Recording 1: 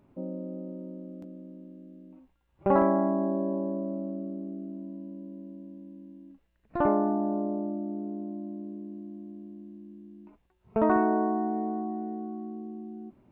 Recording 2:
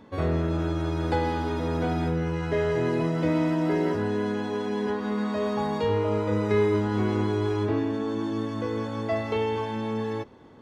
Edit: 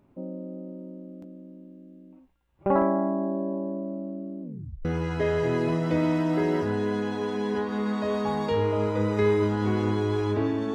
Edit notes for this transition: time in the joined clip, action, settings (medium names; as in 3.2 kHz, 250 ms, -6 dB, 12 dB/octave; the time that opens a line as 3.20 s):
recording 1
4.42 s: tape stop 0.43 s
4.85 s: go over to recording 2 from 2.17 s